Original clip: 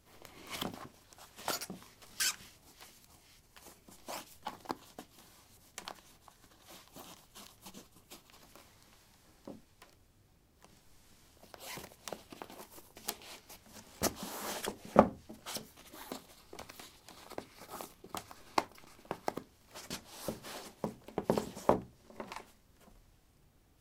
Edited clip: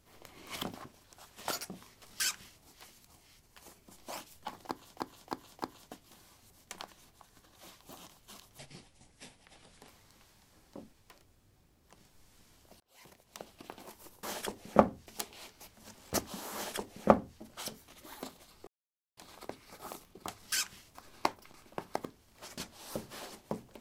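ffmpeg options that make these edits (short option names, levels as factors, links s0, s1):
-filter_complex "[0:a]asplit=13[s0][s1][s2][s3][s4][s5][s6][s7][s8][s9][s10][s11][s12];[s0]atrim=end=4.972[s13];[s1]atrim=start=4.658:end=4.972[s14];[s2]atrim=start=4.658:end=4.972[s15];[s3]atrim=start=4.658:end=7.654[s16];[s4]atrim=start=7.65:end=8.6,asetpts=PTS-STARTPTS,asetrate=32193,aresample=44100,atrim=end_sample=57390,asetpts=PTS-STARTPTS[s17];[s5]atrim=start=8.596:end=11.52,asetpts=PTS-STARTPTS,afade=t=out:st=2.92:d=0.004:c=hsin[s18];[s6]atrim=start=11.52:end=12.952,asetpts=PTS-STARTPTS,afade=t=in:d=0.92[s19];[s7]atrim=start=14.428:end=15.262[s20];[s8]atrim=start=12.948:end=16.56,asetpts=PTS-STARTPTS,afade=t=out:st=3.608:d=0.004:c=hsin[s21];[s9]atrim=start=16.56:end=17.06,asetpts=PTS-STARTPTS,volume=0[s22];[s10]atrim=start=17.06:end=18.282,asetpts=PTS-STARTPTS,afade=t=in:d=0.004:c=hsin[s23];[s11]atrim=start=2.068:end=2.632[s24];[s12]atrim=start=18.278[s25];[s13][s14]acrossfade=d=0.004:c1=hsin:c2=hsin[s26];[s26][s15]acrossfade=d=0.004:c1=hsin:c2=hsin[s27];[s27][s16]acrossfade=d=0.004:c1=hsin:c2=hsin[s28];[s28][s17]acrossfade=d=0.004:c1=hsin:c2=hsin[s29];[s18][s19]concat=n=2:v=0:a=1[s30];[s29][s30]acrossfade=d=0.004:c1=hsin:c2=hsin[s31];[s31][s20]acrossfade=d=0.004:c1=hsin:c2=hsin[s32];[s21][s22][s23]concat=n=3:v=0:a=1[s33];[s32][s33]acrossfade=d=0.004:c1=hsin:c2=hsin[s34];[s34][s24]acrossfade=d=0.004:c1=hsin:c2=hsin[s35];[s35][s25]acrossfade=d=0.004:c1=hsin:c2=hsin"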